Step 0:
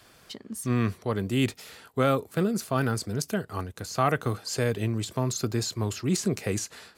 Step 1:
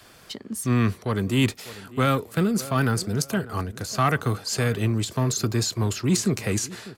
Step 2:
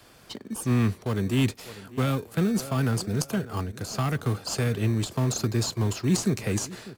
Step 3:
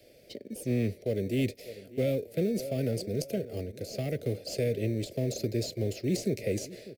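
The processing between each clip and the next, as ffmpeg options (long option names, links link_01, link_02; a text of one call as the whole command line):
ffmpeg -i in.wav -filter_complex "[0:a]asplit=2[link_01][link_02];[link_02]adelay=597,lowpass=frequency=3000:poles=1,volume=-19.5dB,asplit=2[link_03][link_04];[link_04]adelay=597,lowpass=frequency=3000:poles=1,volume=0.31,asplit=2[link_05][link_06];[link_06]adelay=597,lowpass=frequency=3000:poles=1,volume=0.31[link_07];[link_01][link_03][link_05][link_07]amix=inputs=4:normalize=0,acrossover=split=320|900[link_08][link_09][link_10];[link_09]asoftclip=type=tanh:threshold=-35.5dB[link_11];[link_08][link_11][link_10]amix=inputs=3:normalize=0,volume=5dB" out.wav
ffmpeg -i in.wav -filter_complex "[0:a]acrossover=split=290|3000[link_01][link_02][link_03];[link_02]acompressor=threshold=-26dB:ratio=6[link_04];[link_01][link_04][link_03]amix=inputs=3:normalize=0,asplit=2[link_05][link_06];[link_06]acrusher=samples=22:mix=1:aa=0.000001,volume=-8dB[link_07];[link_05][link_07]amix=inputs=2:normalize=0,volume=-4dB" out.wav
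ffmpeg -i in.wav -af "firequalizer=gain_entry='entry(190,0);entry(570,14);entry(980,-29);entry(2100,4);entry(3000,-2);entry(4800,2);entry(7100,-4);entry(13000,3)':delay=0.05:min_phase=1,volume=-7.5dB" out.wav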